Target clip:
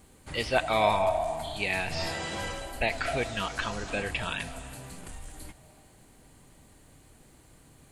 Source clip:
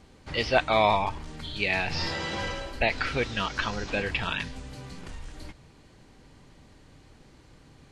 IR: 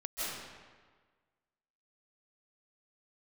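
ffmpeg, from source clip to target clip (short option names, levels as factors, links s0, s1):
-filter_complex "[0:a]aexciter=amount=3.2:drive=9.6:freq=7600,asplit=2[s0][s1];[s1]highpass=f=690:t=q:w=7.4[s2];[1:a]atrim=start_sample=2205,adelay=81[s3];[s2][s3]afir=irnorm=-1:irlink=0,volume=0.0944[s4];[s0][s4]amix=inputs=2:normalize=0,volume=0.708"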